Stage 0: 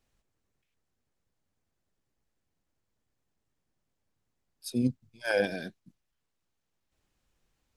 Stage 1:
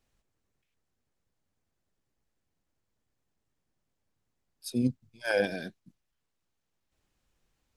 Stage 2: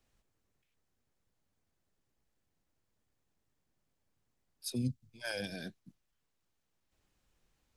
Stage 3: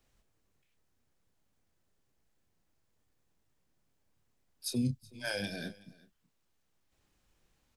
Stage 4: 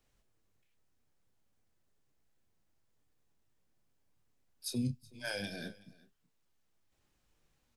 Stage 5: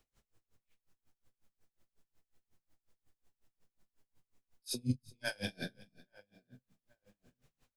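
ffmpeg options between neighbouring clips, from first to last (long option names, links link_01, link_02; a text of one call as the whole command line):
ffmpeg -i in.wav -af anull out.wav
ffmpeg -i in.wav -filter_complex "[0:a]acrossover=split=170|3000[link_01][link_02][link_03];[link_02]acompressor=threshold=-40dB:ratio=6[link_04];[link_01][link_04][link_03]amix=inputs=3:normalize=0" out.wav
ffmpeg -i in.wav -filter_complex "[0:a]asplit=2[link_01][link_02];[link_02]adelay=29,volume=-8.5dB[link_03];[link_01][link_03]amix=inputs=2:normalize=0,aecho=1:1:373:0.075,volume=2.5dB" out.wav
ffmpeg -i in.wav -af "flanger=delay=6.6:depth=2.6:regen=80:speed=0.95:shape=sinusoidal,volume=2dB" out.wav
ffmpeg -i in.wav -filter_complex "[0:a]asplit=2[link_01][link_02];[link_02]adelay=48,volume=-3dB[link_03];[link_01][link_03]amix=inputs=2:normalize=0,asplit=2[link_04][link_05];[link_05]adelay=833,lowpass=frequency=1600:poles=1,volume=-21dB,asplit=2[link_06][link_07];[link_07]adelay=833,lowpass=frequency=1600:poles=1,volume=0.39,asplit=2[link_08][link_09];[link_09]adelay=833,lowpass=frequency=1600:poles=1,volume=0.39[link_10];[link_04][link_06][link_08][link_10]amix=inputs=4:normalize=0,aeval=exprs='val(0)*pow(10,-30*(0.5-0.5*cos(2*PI*5.5*n/s))/20)':channel_layout=same,volume=4dB" out.wav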